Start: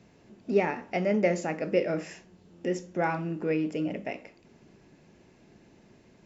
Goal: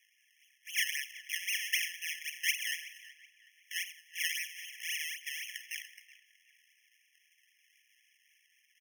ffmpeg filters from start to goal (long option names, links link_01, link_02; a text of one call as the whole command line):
ffmpeg -i in.wav -filter_complex "[0:a]highpass=frequency=90:poles=1,bass=frequency=250:gain=-6,treble=frequency=4000:gain=-5,atempo=0.71,acrusher=samples=26:mix=1:aa=0.000001:lfo=1:lforange=26:lforate=3.8,tiltshelf=frequency=700:gain=-4,asplit=2[link_01][link_02];[link_02]adelay=374,lowpass=frequency=3600:poles=1,volume=-16dB,asplit=2[link_03][link_04];[link_04]adelay=374,lowpass=frequency=3600:poles=1,volume=0.39,asplit=2[link_05][link_06];[link_06]adelay=374,lowpass=frequency=3600:poles=1,volume=0.39[link_07];[link_03][link_05][link_07]amix=inputs=3:normalize=0[link_08];[link_01][link_08]amix=inputs=2:normalize=0,afftfilt=real='re*eq(mod(floor(b*sr/1024/1700),2),1)':imag='im*eq(mod(floor(b*sr/1024/1700),2),1)':win_size=1024:overlap=0.75" out.wav